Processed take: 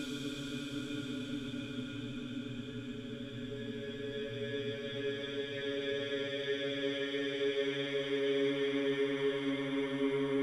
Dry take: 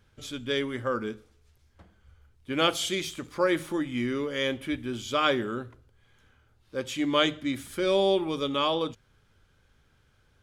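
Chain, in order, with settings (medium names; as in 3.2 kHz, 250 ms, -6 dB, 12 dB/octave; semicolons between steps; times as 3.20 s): dynamic bell 610 Hz, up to +6 dB, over -38 dBFS, Q 0.74; reverse; compression 5:1, threshold -30 dBFS, peak gain reduction 14 dB; reverse; transient shaper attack -3 dB, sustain +5 dB; Paulstretch 34×, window 0.25 s, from 0.34 s; trim -2 dB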